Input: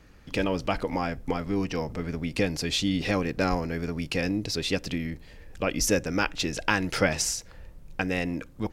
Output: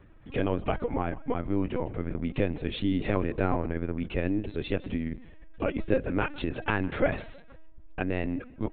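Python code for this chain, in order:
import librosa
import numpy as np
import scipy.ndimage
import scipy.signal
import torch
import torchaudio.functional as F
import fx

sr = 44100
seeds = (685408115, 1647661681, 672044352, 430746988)

y = fx.high_shelf(x, sr, hz=2200.0, db=-12.0)
y = fx.echo_feedback(y, sr, ms=160, feedback_pct=34, wet_db=-20.5)
y = fx.lpc_vocoder(y, sr, seeds[0], excitation='pitch_kept', order=16)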